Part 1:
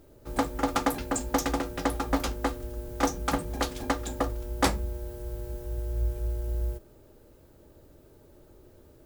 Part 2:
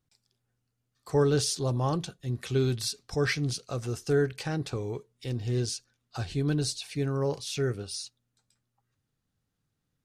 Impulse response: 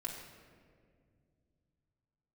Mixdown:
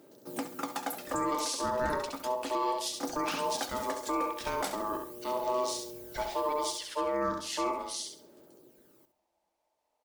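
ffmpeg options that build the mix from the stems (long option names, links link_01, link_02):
-filter_complex "[0:a]highpass=frequency=180:width=0.5412,highpass=frequency=180:width=1.3066,highshelf=frequency=6800:gain=7.5,aphaser=in_gain=1:out_gain=1:delay=1.9:decay=0.5:speed=0.36:type=sinusoidal,volume=3.5dB,afade=type=out:start_time=0.91:duration=0.59:silence=0.334965,afade=type=in:start_time=2.94:duration=0.34:silence=0.375837,asplit=2[link_01][link_02];[link_02]volume=-12dB[link_03];[1:a]bandreject=frequency=600:width=16,aeval=exprs='val(0)*sin(2*PI*750*n/s)':channel_layout=same,volume=1dB,asplit=3[link_04][link_05][link_06];[link_05]volume=-21dB[link_07];[link_06]volume=-4.5dB[link_08];[2:a]atrim=start_sample=2205[link_09];[link_07][link_09]afir=irnorm=-1:irlink=0[link_10];[link_03][link_08]amix=inputs=2:normalize=0,aecho=0:1:67|134|201|268:1|0.28|0.0784|0.022[link_11];[link_01][link_04][link_10][link_11]amix=inputs=4:normalize=0,alimiter=limit=-21.5dB:level=0:latency=1:release=252"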